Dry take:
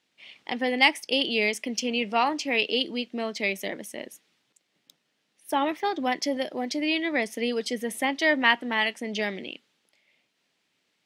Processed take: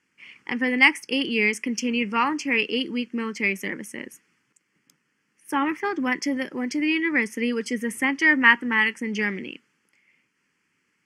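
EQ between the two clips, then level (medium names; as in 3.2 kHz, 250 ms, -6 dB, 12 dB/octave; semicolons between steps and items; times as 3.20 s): Bessel low-pass 8.1 kHz, order 2; static phaser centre 1.6 kHz, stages 4; +7.0 dB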